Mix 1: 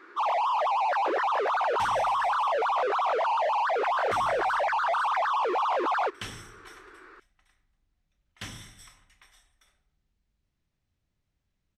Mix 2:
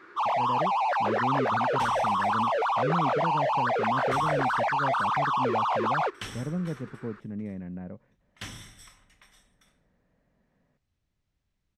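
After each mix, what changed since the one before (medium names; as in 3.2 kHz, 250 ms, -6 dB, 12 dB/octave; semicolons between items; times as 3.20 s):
speech: unmuted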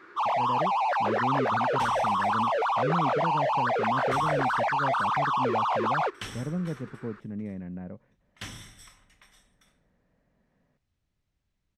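no change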